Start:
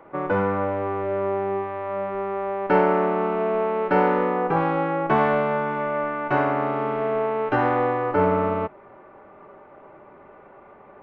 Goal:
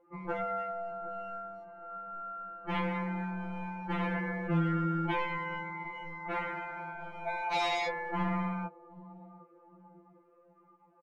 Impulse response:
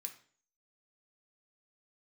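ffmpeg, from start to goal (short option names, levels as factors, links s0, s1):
-filter_complex "[0:a]asplit=3[s0][s1][s2];[s0]afade=t=out:st=7.27:d=0.02[s3];[s1]highpass=f=730:t=q:w=8.4,afade=t=in:st=7.27:d=0.02,afade=t=out:st=7.87:d=0.02[s4];[s2]afade=t=in:st=7.87:d=0.02[s5];[s3][s4][s5]amix=inputs=3:normalize=0,asoftclip=type=hard:threshold=0.1,asplit=2[s6][s7];[s7]adelay=764,lowpass=f=970:p=1,volume=0.158,asplit=2[s8][s9];[s9]adelay=764,lowpass=f=970:p=1,volume=0.52,asplit=2[s10][s11];[s11]adelay=764,lowpass=f=970:p=1,volume=0.52,asplit=2[s12][s13];[s13]adelay=764,lowpass=f=970:p=1,volume=0.52,asplit=2[s14][s15];[s15]adelay=764,lowpass=f=970:p=1,volume=0.52[s16];[s8][s10][s12][s14][s16]amix=inputs=5:normalize=0[s17];[s6][s17]amix=inputs=2:normalize=0,afftdn=nr=19:nf=-37,afftfilt=real='re*2.83*eq(mod(b,8),0)':imag='im*2.83*eq(mod(b,8),0)':win_size=2048:overlap=0.75,volume=0.75"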